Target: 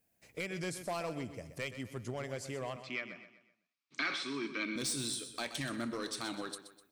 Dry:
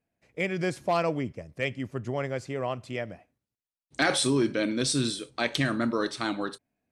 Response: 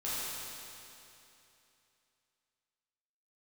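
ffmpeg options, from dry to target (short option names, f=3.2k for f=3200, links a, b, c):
-filter_complex "[0:a]aemphasis=mode=production:type=75kf,acompressor=threshold=-44dB:ratio=2,volume=31.5dB,asoftclip=hard,volume=-31.5dB,asettb=1/sr,asplit=3[a][b][c];[a]atrim=end=2.764[d];[b]atrim=start=2.76:end=4.76,asetpts=PTS-STARTPTS,afade=t=in:d=0.004:c=qsin,afade=t=out:st=1.996:d=0.004:c=qsin,highpass=f=180:w=0.5412,highpass=f=180:w=1.3066,equalizer=f=510:t=q:w=4:g=-9,equalizer=f=760:t=q:w=4:g=-10,equalizer=f=1.2k:t=q:w=4:g=10,equalizer=f=2.3k:t=q:w=4:g=10,lowpass=f=5.1k:w=0.5412,lowpass=f=5.1k:w=1.3066[e];[c]atrim=start=4.756[f];[d][e]acrossfade=d=0.004:c1=hsin:c2=qsin[g];[g][f]acrossfade=d=0.004:c1=qsin:c2=hsin,aecho=1:1:126|252|378|504:0.266|0.109|0.0447|0.0183"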